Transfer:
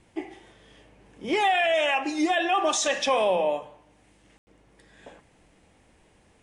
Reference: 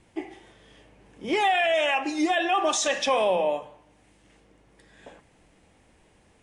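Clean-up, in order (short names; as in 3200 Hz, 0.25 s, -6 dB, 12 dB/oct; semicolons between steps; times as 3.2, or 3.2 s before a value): room tone fill 4.38–4.47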